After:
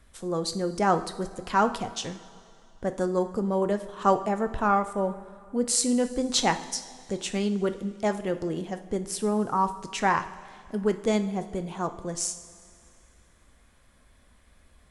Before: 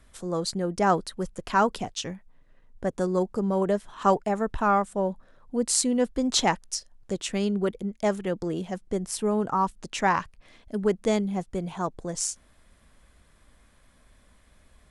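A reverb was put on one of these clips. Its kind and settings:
coupled-rooms reverb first 0.52 s, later 2.5 s, from −13 dB, DRR 8 dB
level −1 dB

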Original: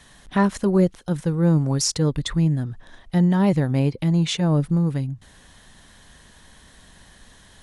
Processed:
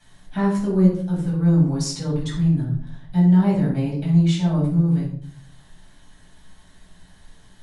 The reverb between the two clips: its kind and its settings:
rectangular room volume 620 cubic metres, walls furnished, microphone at 8 metres
level −14.5 dB

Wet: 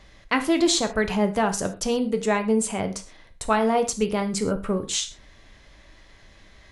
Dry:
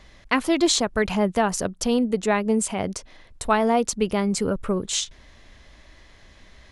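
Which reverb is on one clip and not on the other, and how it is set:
reverb whose tail is shaped and stops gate 150 ms falling, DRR 6.5 dB
level −1.5 dB

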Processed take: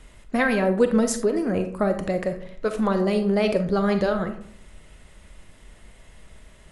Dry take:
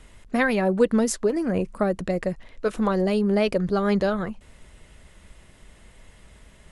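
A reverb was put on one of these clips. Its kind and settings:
comb and all-pass reverb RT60 0.62 s, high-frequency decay 0.45×, pre-delay 0 ms, DRR 7 dB

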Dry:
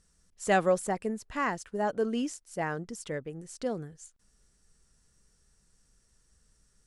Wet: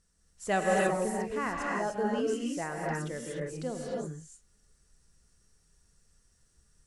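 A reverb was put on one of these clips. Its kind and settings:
reverb whose tail is shaped and stops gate 330 ms rising, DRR −3 dB
level −4.5 dB

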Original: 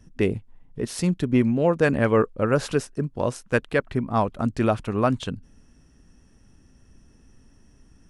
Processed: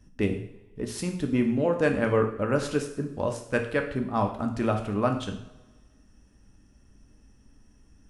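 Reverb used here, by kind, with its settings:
coupled-rooms reverb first 0.6 s, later 1.6 s, from −18 dB, DRR 3.5 dB
level −5 dB

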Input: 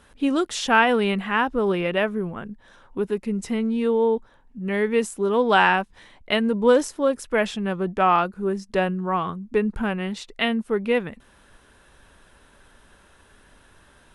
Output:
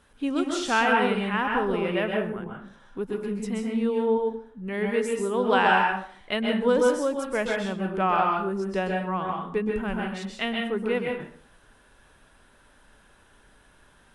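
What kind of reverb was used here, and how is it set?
dense smooth reverb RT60 0.52 s, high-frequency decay 0.7×, pre-delay 115 ms, DRR 0 dB
level −6 dB

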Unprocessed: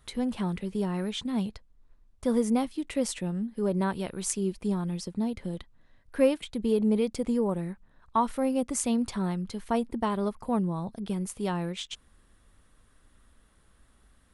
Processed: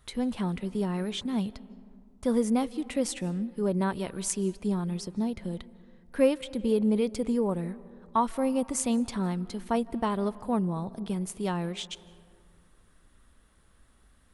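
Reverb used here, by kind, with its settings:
comb and all-pass reverb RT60 2.2 s, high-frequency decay 0.35×, pre-delay 120 ms, DRR 19.5 dB

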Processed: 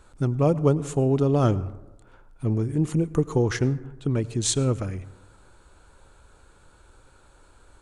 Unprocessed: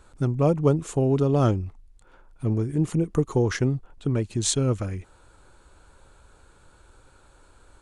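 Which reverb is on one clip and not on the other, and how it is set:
dense smooth reverb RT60 1.1 s, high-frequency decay 0.35×, pre-delay 80 ms, DRR 18 dB

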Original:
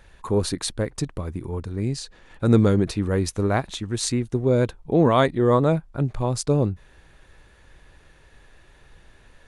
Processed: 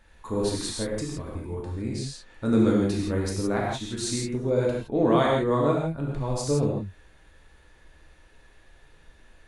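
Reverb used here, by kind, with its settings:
reverb whose tail is shaped and stops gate 190 ms flat, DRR −3.5 dB
level −8 dB

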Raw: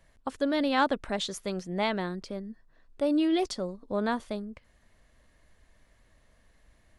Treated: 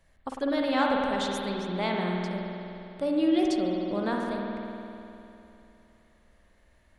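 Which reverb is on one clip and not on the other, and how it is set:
spring reverb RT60 3 s, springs 50 ms, chirp 25 ms, DRR −1 dB
level −2.5 dB

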